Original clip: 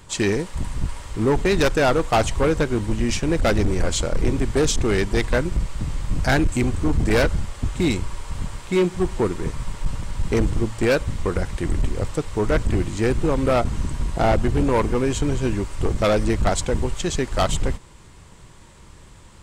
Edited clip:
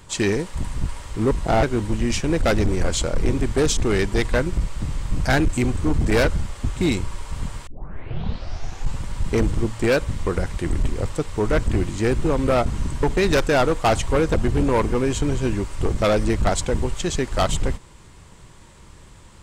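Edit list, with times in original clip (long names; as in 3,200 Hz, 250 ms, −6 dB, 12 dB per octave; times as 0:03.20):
0:01.31–0:02.62: swap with 0:14.02–0:14.34
0:08.66: tape start 1.33 s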